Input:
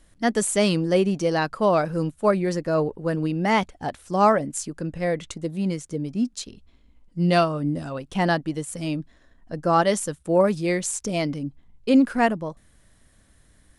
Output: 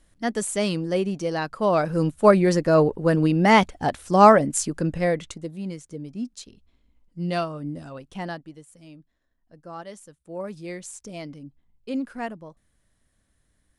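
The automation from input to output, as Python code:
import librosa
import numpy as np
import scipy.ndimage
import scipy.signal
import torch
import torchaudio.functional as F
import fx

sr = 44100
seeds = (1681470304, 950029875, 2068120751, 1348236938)

y = fx.gain(x, sr, db=fx.line((1.48, -4.0), (2.2, 5.0), (4.91, 5.0), (5.59, -7.0), (8.03, -7.0), (8.77, -19.0), (10.15, -19.0), (10.59, -11.5)))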